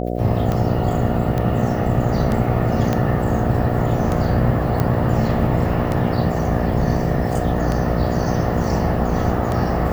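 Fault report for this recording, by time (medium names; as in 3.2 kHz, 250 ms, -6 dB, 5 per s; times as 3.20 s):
buzz 60 Hz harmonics 12 -23 dBFS
tick 33 1/3 rpm -10 dBFS
1.38 s: pop -11 dBFS
2.93 s: pop -7 dBFS
4.80 s: pop -8 dBFS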